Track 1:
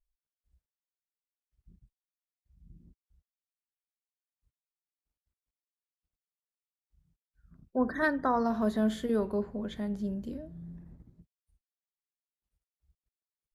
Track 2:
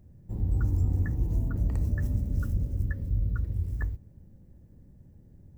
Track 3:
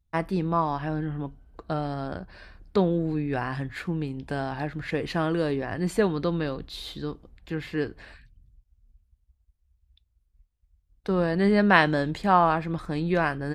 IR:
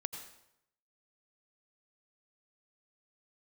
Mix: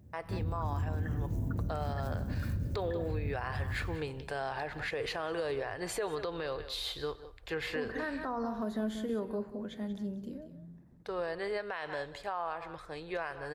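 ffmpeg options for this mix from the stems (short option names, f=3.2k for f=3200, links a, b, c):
-filter_complex "[0:a]highpass=120,volume=-5.5dB,asplit=3[a][b][c];[b]volume=-11dB[d];[c]volume=-10.5dB[e];[1:a]highpass=81,volume=-2dB,asplit=2[f][g];[g]volume=-6.5dB[h];[2:a]firequalizer=gain_entry='entry(110,0);entry(200,-17);entry(440,6)':delay=0.05:min_phase=1,dynaudnorm=f=160:g=17:m=11.5dB,volume=-12dB,asplit=3[i][j][k];[j]volume=-12.5dB[l];[k]volume=-16.5dB[m];[3:a]atrim=start_sample=2205[n];[d][h][l]amix=inputs=3:normalize=0[o];[o][n]afir=irnorm=-1:irlink=0[p];[e][m]amix=inputs=2:normalize=0,aecho=0:1:184:1[q];[a][f][i][p][q]amix=inputs=5:normalize=0,alimiter=level_in=2dB:limit=-24dB:level=0:latency=1:release=114,volume=-2dB"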